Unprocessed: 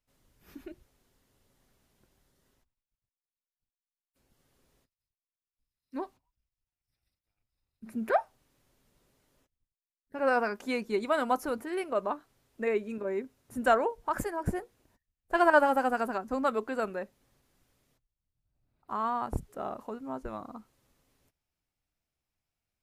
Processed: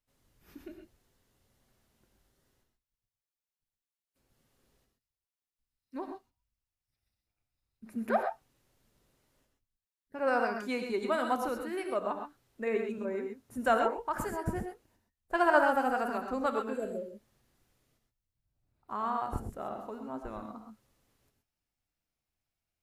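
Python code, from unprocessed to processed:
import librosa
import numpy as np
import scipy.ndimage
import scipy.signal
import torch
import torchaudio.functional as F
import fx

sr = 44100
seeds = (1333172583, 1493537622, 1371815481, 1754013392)

y = fx.spec_repair(x, sr, seeds[0], start_s=16.72, length_s=0.38, low_hz=670.0, high_hz=6100.0, source='both')
y = fx.rev_gated(y, sr, seeds[1], gate_ms=150, shape='rising', drr_db=4.5)
y = y * 10.0 ** (-3.0 / 20.0)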